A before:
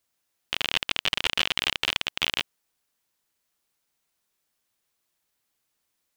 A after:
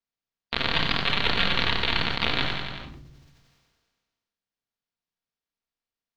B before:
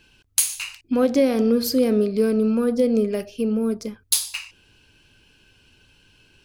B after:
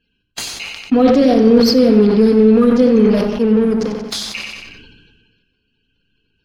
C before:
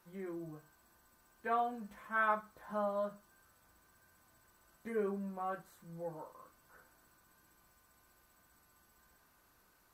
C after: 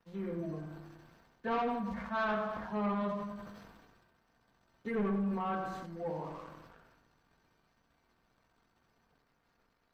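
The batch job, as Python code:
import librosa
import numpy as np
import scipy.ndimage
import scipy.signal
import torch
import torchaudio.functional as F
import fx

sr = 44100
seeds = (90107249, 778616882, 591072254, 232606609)

p1 = fx.spec_quant(x, sr, step_db=30)
p2 = fx.bass_treble(p1, sr, bass_db=3, treble_db=11)
p3 = fx.room_shoebox(p2, sr, seeds[0], volume_m3=2300.0, walls='furnished', distance_m=1.7)
p4 = fx.leveller(p3, sr, passes=3)
p5 = fx.air_absorb(p4, sr, metres=240.0)
p6 = p5 + fx.echo_feedback(p5, sr, ms=92, feedback_pct=39, wet_db=-11, dry=0)
p7 = fx.sustainer(p6, sr, db_per_s=36.0)
y = p7 * librosa.db_to_amplitude(-6.5)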